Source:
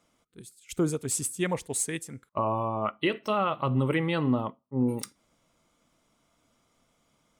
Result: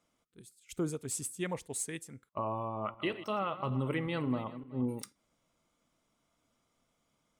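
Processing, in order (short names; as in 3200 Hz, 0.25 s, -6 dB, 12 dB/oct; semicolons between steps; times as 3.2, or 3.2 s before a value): 2.57–4.86 regenerating reverse delay 0.188 s, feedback 41%, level -13 dB; gain -7.5 dB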